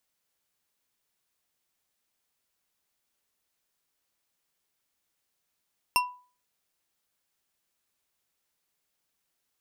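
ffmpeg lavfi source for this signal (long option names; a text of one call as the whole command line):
ffmpeg -f lavfi -i "aevalsrc='0.112*pow(10,-3*t/0.39)*sin(2*PI*991*t)+0.0891*pow(10,-3*t/0.192)*sin(2*PI*2732.2*t)+0.0708*pow(10,-3*t/0.12)*sin(2*PI*5355.4*t)+0.0562*pow(10,-3*t/0.084)*sin(2*PI*8852.6*t)+0.0447*pow(10,-3*t/0.064)*sin(2*PI*13219.9*t)':duration=0.89:sample_rate=44100" out.wav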